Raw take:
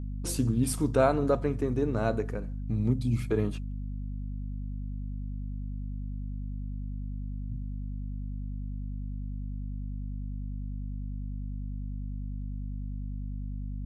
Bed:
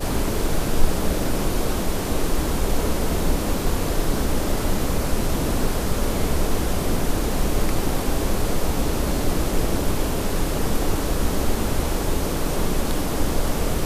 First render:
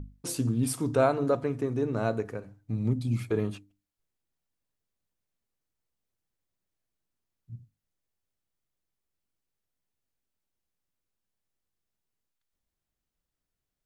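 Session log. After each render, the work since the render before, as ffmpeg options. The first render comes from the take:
-af "bandreject=f=50:t=h:w=6,bandreject=f=100:t=h:w=6,bandreject=f=150:t=h:w=6,bandreject=f=200:t=h:w=6,bandreject=f=250:t=h:w=6,bandreject=f=300:t=h:w=6"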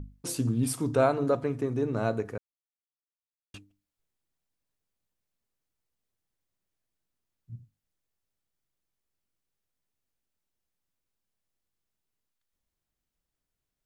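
-filter_complex "[0:a]asplit=3[a][b][c];[a]atrim=end=2.38,asetpts=PTS-STARTPTS,afade=t=out:st=2.376:d=0.004:c=hsin[d];[b]atrim=start=2.38:end=3.54,asetpts=PTS-STARTPTS,volume=0[e];[c]atrim=start=3.54,asetpts=PTS-STARTPTS,afade=t=in:d=0.004:c=hsin[f];[d][e][f]concat=n=3:v=0:a=1"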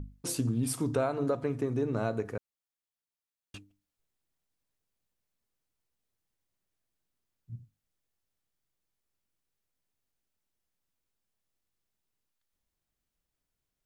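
-af "acompressor=threshold=-25dB:ratio=6"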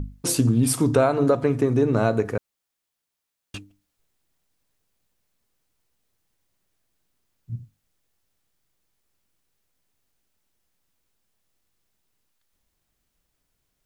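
-af "volume=10.5dB"

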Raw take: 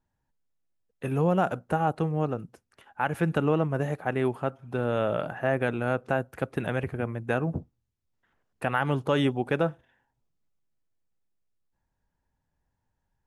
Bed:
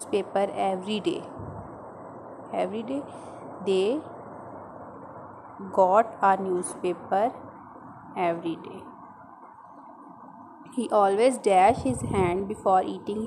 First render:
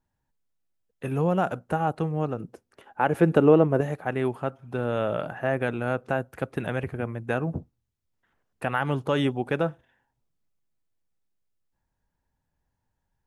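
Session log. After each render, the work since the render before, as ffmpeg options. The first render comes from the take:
-filter_complex "[0:a]asettb=1/sr,asplit=3[a][b][c];[a]atrim=end=2.404[d];[b]atrim=start=2.4:end=3.81,asetpts=PTS-STARTPTS,afade=t=in:d=0.004:c=qsin,afade=t=out:st=1.406:d=0.004:c=qsin,equalizer=f=410:w=0.71:g=9.5[e];[c]atrim=start=3.806[f];[d][e]acrossfade=d=0.004:c1=hsin:c2=qsin[g];[g][f]acrossfade=d=0.004:c1=qsin:c2=hsin"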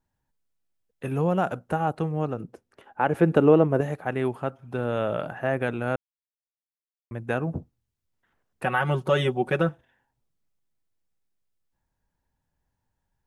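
-filter_complex "[0:a]asettb=1/sr,asplit=3[a][b][c];[a]atrim=end=2.434[d];[b]atrim=start=2.43:end=3.37,asetpts=PTS-STARTPTS,afade=t=in:d=0.004:c=qsin,afade=t=out:st=0.936:d=0.004:c=qsin,highshelf=f=4.4k:g=-4.5[e];[c]atrim=start=3.366[f];[d][e]acrossfade=d=0.004:c1=hsin:c2=qsin[g];[g][f]acrossfade=d=0.004:c1=qsin:c2=hsin,asettb=1/sr,asplit=3[h][i][j];[h]atrim=end=8.644[k];[i]atrim=start=8.64:end=9.69,asetpts=PTS-STARTPTS,afade=t=in:d=0.004:c=qsin,afade=t=out:st=1.046:d=0.004:c=qsin,aecho=1:1:5.4:0.86,atrim=end_sample=46305[l];[j]atrim=start=9.686[m];[k][l]acrossfade=d=0.004:c1=hsin:c2=qsin[n];[n][m]acrossfade=d=0.004:c1=qsin:c2=hsin,asplit=3[o][p][q];[o]atrim=end=5.96,asetpts=PTS-STARTPTS,afade=t=out:st=5.956:d=0.004:c=hsin[r];[p]atrim=start=5.96:end=7.11,asetpts=PTS-STARTPTS,volume=0[s];[q]atrim=start=7.11,asetpts=PTS-STARTPTS,afade=t=in:d=0.004:c=hsin[t];[r][s][t]concat=n=3:v=0:a=1"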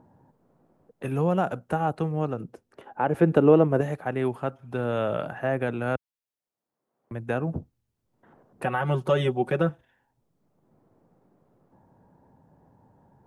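-filter_complex "[0:a]acrossover=split=110|990[a][b][c];[b]acompressor=mode=upward:threshold=-37dB:ratio=2.5[d];[c]alimiter=limit=-24dB:level=0:latency=1:release=210[e];[a][d][e]amix=inputs=3:normalize=0"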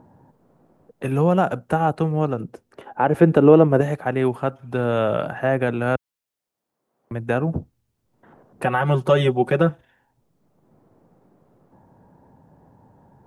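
-af "volume=6dB,alimiter=limit=-2dB:level=0:latency=1"

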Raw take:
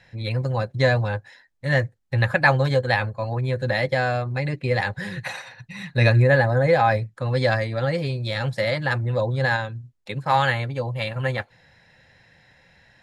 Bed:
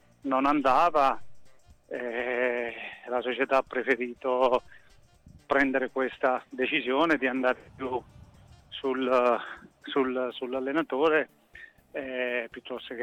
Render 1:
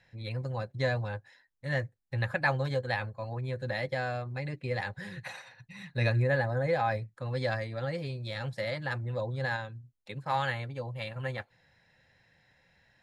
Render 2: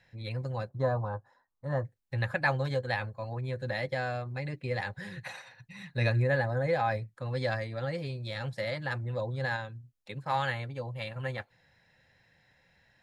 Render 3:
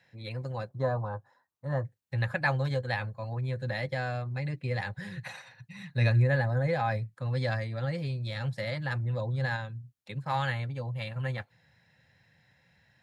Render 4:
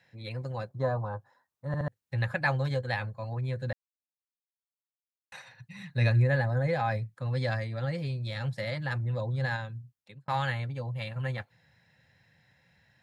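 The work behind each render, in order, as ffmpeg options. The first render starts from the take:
-af "volume=-10.5dB"
-filter_complex "[0:a]asettb=1/sr,asplit=3[a][b][c];[a]atrim=end=0.694[d];[b]atrim=start=0.69:end=1.85,asetpts=PTS-STARTPTS,afade=t=in:d=0.004:c=qsin,afade=t=out:st=1.156:d=0.004:c=qsin,highshelf=f=1.6k:t=q:w=3:g=-12.5[e];[c]atrim=start=1.846[f];[d][e]acrossfade=d=0.004:c1=hsin:c2=qsin[g];[g][f]acrossfade=d=0.004:c1=qsin:c2=hsin"
-af "highpass=120,asubboost=boost=3:cutoff=180"
-filter_complex "[0:a]asplit=7[a][b][c][d][e][f][g];[a]atrim=end=1.742[h];[b]atrim=start=1.668:end=1.742[i];[c]atrim=start=1.668:end=1.742[j];[d]atrim=start=1.878:end=3.73,asetpts=PTS-STARTPTS,afade=t=out:st=1.848:d=0.004:c=hsin[k];[e]atrim=start=3.73:end=5.32,asetpts=PTS-STARTPTS,volume=0[l];[f]atrim=start=5.32:end=10.28,asetpts=PTS-STARTPTS,afade=t=in:d=0.004:c=hsin,afade=t=out:st=4.45:d=0.51[m];[g]atrim=start=10.28,asetpts=PTS-STARTPTS,afade=t=in:d=0.004:c=hsin[n];[h][i]acrossfade=d=0.004:c1=hsin:c2=hsin[o];[o][j]acrossfade=d=0.004:c1=hsin:c2=hsin[p];[k][l][m][n]concat=n=4:v=0:a=1[q];[p][q]acrossfade=d=0.004:c1=hsin:c2=hsin"

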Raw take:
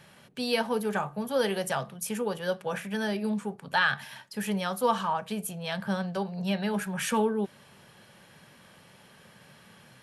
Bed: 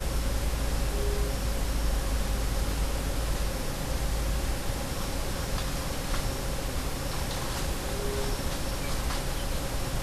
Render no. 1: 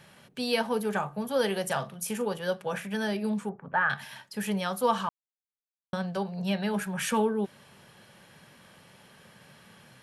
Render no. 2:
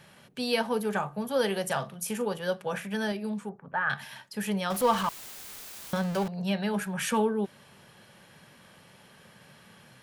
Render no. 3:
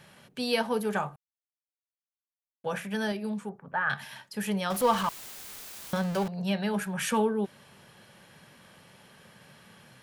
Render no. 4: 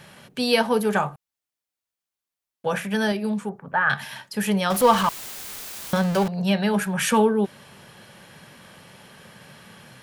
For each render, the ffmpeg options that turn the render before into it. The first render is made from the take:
-filter_complex "[0:a]asettb=1/sr,asplit=3[a][b][c];[a]atrim=end=1.664[d];[b]atrim=start=1.66:end=2.33,asetpts=PTS-STARTPTS,afade=t=in:d=0.004:c=qsin,afade=t=out:st=0.666:d=0.004:c=qsin,asplit=2[e][f];[f]adelay=41,volume=-12dB[g];[e][g]amix=inputs=2:normalize=0,atrim=end_sample=29547[h];[c]atrim=start=2.326[i];[d][h]acrossfade=d=0.004:c1=hsin:c2=qsin[j];[j][i]acrossfade=d=0.004:c1=qsin:c2=hsin,asettb=1/sr,asplit=3[k][l][m];[k]atrim=end=3.494[n];[l]atrim=start=3.49:end=3.9,asetpts=PTS-STARTPTS,afade=t=in:d=0.004:c=qsin,afade=t=out:st=0.406:d=0.004:c=qsin,lowpass=f=1.8k:w=0.5412,lowpass=f=1.8k:w=1.3066[o];[m]atrim=start=3.896[p];[n][o]acrossfade=d=0.004:c1=hsin:c2=qsin[q];[q][p]acrossfade=d=0.004:c1=qsin:c2=hsin,asplit=3[r][s][t];[r]atrim=end=5.09,asetpts=PTS-STARTPTS,afade=t=out:st=5.086:d=0.004:c=hsin[u];[s]atrim=start=5.09:end=5.93,asetpts=PTS-STARTPTS,volume=0[v];[t]atrim=start=5.93,asetpts=PTS-STARTPTS,afade=t=in:d=0.004:c=hsin[w];[u][v][w]concat=n=3:v=0:a=1"
-filter_complex "[0:a]asettb=1/sr,asplit=3[a][b][c];[a]atrim=end=4.704[d];[b]atrim=start=4.7:end=6.28,asetpts=PTS-STARTPTS,afade=t=in:d=0.004:c=qsin,afade=t=out:st=1.576:d=0.004:c=qsin,aeval=exprs='val(0)+0.5*0.0251*sgn(val(0))':c=same[e];[c]atrim=start=6.276[f];[d][e]acrossfade=d=0.004:c1=hsin:c2=qsin[g];[g][f]acrossfade=d=0.004:c1=qsin:c2=hsin,asplit=3[h][i][j];[h]atrim=end=3.122[k];[i]atrim=start=3.118:end=3.872,asetpts=PTS-STARTPTS,volume=-3.5dB[l];[j]atrim=start=3.868[m];[k][l]acrossfade=d=0.004:c1=hsin:c2=hsin[n];[n][m]acrossfade=d=0.004:c1=hsin:c2=hsin"
-filter_complex "[0:a]asplit=3[a][b][c];[a]atrim=end=1.16,asetpts=PTS-STARTPTS,afade=t=out:st=1.156:d=0.004:c=hsin[d];[b]atrim=start=1.16:end=2.64,asetpts=PTS-STARTPTS,volume=0[e];[c]atrim=start=2.64,asetpts=PTS-STARTPTS,afade=t=in:d=0.004:c=hsin[f];[d][e][f]concat=n=3:v=0:a=1"
-af "volume=7.5dB"

